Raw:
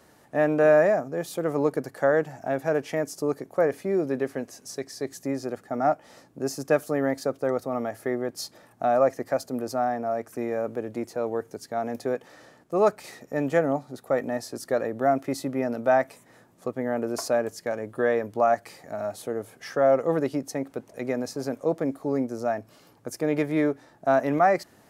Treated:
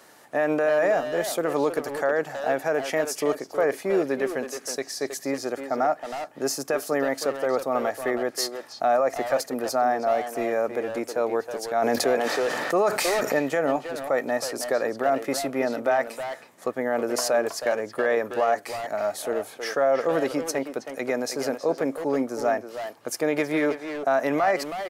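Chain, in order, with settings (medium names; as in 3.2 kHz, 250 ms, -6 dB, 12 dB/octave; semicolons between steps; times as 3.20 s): high-pass 640 Hz 6 dB/octave; peak limiter -21.5 dBFS, peak gain reduction 10 dB; speakerphone echo 320 ms, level -6 dB; 11.82–13.39 s: level flattener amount 70%; trim +7.5 dB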